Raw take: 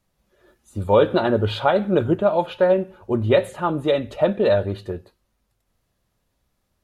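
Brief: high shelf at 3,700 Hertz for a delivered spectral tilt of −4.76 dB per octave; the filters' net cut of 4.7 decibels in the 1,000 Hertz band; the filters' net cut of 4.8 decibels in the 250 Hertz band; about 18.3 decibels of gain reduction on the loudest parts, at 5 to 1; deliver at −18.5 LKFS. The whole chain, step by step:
parametric band 250 Hz −7 dB
parametric band 1,000 Hz −6.5 dB
high-shelf EQ 3,700 Hz +9 dB
downward compressor 5 to 1, threshold −35 dBFS
level +19.5 dB

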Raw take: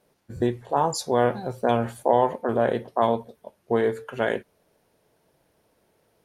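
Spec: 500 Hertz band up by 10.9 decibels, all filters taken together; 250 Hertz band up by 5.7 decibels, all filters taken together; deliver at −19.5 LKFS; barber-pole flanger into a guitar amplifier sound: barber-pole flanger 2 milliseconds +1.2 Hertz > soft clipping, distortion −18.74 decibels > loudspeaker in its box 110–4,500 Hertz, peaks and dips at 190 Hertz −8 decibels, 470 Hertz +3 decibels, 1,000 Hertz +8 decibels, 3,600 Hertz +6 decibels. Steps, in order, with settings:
parametric band 250 Hz +5.5 dB
parametric band 500 Hz +9 dB
barber-pole flanger 2 ms +1.2 Hz
soft clipping −10.5 dBFS
loudspeaker in its box 110–4,500 Hz, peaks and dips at 190 Hz −8 dB, 470 Hz +3 dB, 1,000 Hz +8 dB, 3,600 Hz +6 dB
level +1 dB

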